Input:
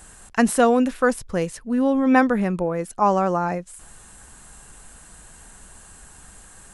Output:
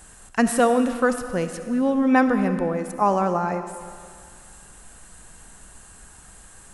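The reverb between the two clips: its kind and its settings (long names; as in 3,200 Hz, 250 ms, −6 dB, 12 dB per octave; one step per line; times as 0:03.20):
comb and all-pass reverb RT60 2.1 s, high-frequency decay 0.95×, pre-delay 25 ms, DRR 8.5 dB
level −1.5 dB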